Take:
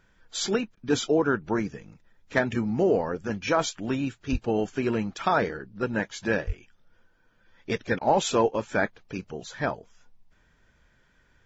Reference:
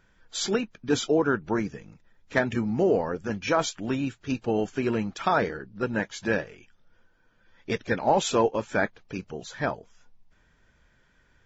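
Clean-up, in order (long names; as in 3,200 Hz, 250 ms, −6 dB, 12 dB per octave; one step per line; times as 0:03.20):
high-pass at the plosives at 0:04.31/0:06.46
repair the gap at 0:00.75/0:07.99, 20 ms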